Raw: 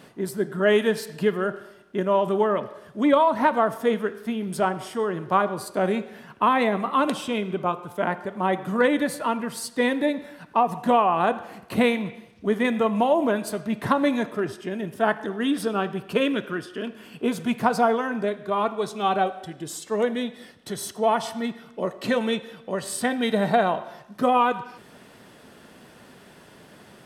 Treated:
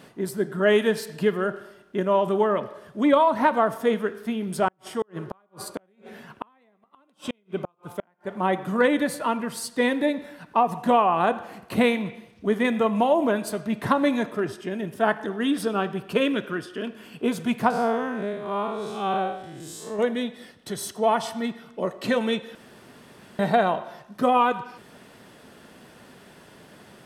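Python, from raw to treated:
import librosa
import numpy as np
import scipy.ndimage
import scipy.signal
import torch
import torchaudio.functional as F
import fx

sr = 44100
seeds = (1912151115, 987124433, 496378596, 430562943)

y = fx.gate_flip(x, sr, shuts_db=-16.0, range_db=-40, at=(4.68, 8.35))
y = fx.spec_blur(y, sr, span_ms=153.0, at=(17.7, 19.99))
y = fx.edit(y, sr, fx.room_tone_fill(start_s=22.55, length_s=0.84), tone=tone)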